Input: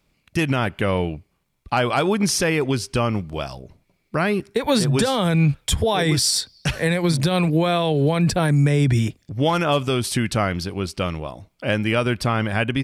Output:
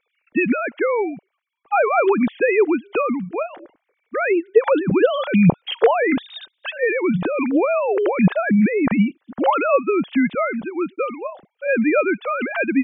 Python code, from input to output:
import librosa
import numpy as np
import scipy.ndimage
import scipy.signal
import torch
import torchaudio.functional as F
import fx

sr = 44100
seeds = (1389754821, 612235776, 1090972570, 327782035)

y = fx.sine_speech(x, sr)
y = y * librosa.db_to_amplitude(1.5)